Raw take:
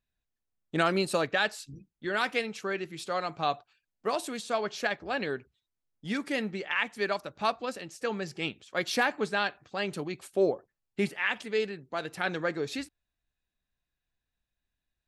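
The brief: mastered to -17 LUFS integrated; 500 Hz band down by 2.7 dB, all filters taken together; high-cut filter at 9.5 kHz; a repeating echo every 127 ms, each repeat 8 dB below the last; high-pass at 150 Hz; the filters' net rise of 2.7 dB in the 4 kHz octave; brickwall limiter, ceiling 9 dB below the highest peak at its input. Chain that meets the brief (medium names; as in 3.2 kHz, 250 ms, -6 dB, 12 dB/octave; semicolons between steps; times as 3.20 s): high-pass 150 Hz; low-pass 9.5 kHz; peaking EQ 500 Hz -3.5 dB; peaking EQ 4 kHz +3.5 dB; peak limiter -19.5 dBFS; feedback delay 127 ms, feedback 40%, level -8 dB; trim +16.5 dB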